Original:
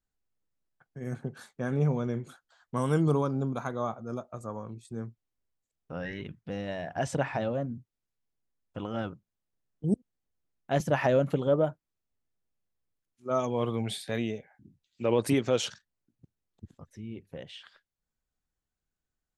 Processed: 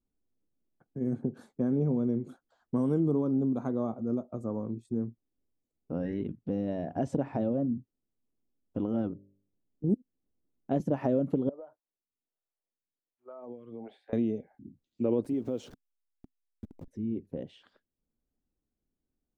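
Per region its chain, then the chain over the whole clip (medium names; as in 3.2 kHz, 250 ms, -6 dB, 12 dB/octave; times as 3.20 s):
9.07–9.89 s: distance through air 310 m + de-hum 49.4 Hz, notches 13
11.49–14.13 s: three-band isolator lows -18 dB, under 560 Hz, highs -21 dB, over 2.4 kHz + compression 16:1, threshold -39 dBFS + lamp-driven phase shifter 1.3 Hz
15.24–16.88 s: send-on-delta sampling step -44 dBFS + compression 2:1, threshold -41 dBFS
whole clip: FFT filter 150 Hz 0 dB, 260 Hz +10 dB, 1.7 kHz -14 dB; compression 2.5:1, threshold -29 dBFS; trim +2 dB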